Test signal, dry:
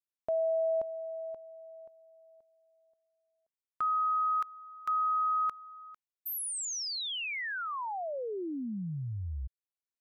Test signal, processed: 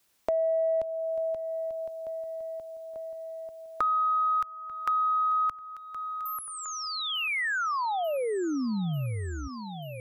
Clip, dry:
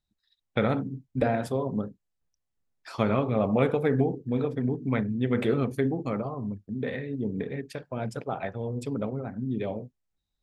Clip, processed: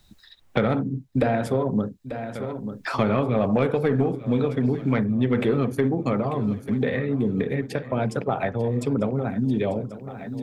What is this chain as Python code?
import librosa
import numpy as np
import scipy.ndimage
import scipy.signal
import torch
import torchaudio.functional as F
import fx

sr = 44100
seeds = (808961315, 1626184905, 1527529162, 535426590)

y = 10.0 ** (-14.5 / 20.0) * np.tanh(x / 10.0 ** (-14.5 / 20.0))
y = fx.echo_feedback(y, sr, ms=891, feedback_pct=54, wet_db=-19.5)
y = fx.band_squash(y, sr, depth_pct=70)
y = F.gain(torch.from_numpy(y), 5.0).numpy()